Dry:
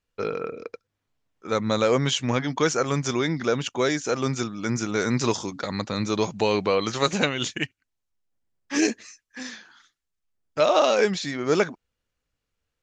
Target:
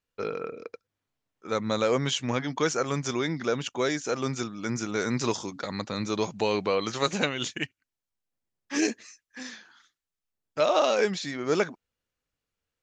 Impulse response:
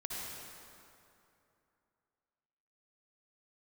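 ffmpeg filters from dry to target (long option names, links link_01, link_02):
-af "lowshelf=frequency=73:gain=-7.5,volume=-3.5dB"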